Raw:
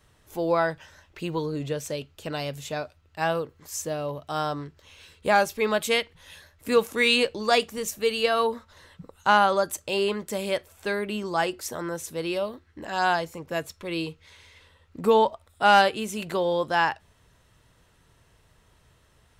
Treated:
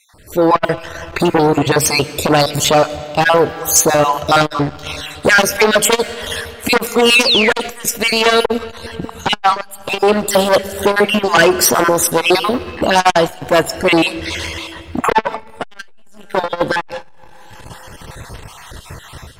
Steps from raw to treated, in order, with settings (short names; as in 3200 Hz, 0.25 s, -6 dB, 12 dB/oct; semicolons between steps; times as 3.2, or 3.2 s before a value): random spectral dropouts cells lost 37%; AGC gain up to 15 dB; painted sound fall, 7.2–7.53, 1600–6200 Hz -23 dBFS; in parallel at +2.5 dB: compressor 5:1, threshold -24 dBFS, peak gain reduction 15.5 dB; on the sum: dynamic EQ 160 Hz, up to -5 dB, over -33 dBFS, Q 3.5; sine folder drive 7 dB, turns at -0.5 dBFS; reverb RT60 2.9 s, pre-delay 70 ms, DRR 16 dB; core saturation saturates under 610 Hz; gain -2.5 dB